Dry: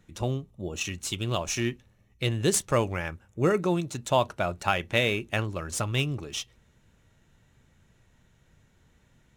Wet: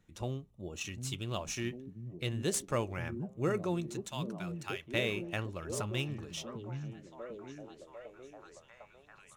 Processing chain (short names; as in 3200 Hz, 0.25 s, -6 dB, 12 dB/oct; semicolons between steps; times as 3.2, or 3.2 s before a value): 4.09–4.94 passive tone stack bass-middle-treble 10-0-10; delay with a stepping band-pass 0.75 s, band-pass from 170 Hz, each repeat 0.7 oct, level -1.5 dB; gain -8.5 dB